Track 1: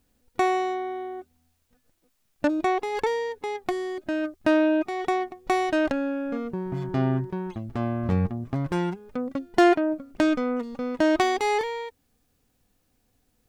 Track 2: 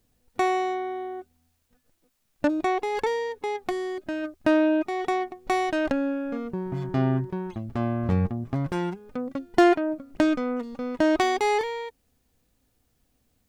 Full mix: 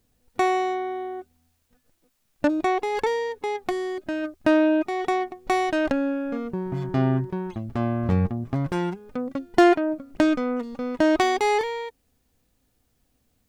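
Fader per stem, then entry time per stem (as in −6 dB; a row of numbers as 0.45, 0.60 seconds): −15.5, +0.5 decibels; 0.00, 0.00 seconds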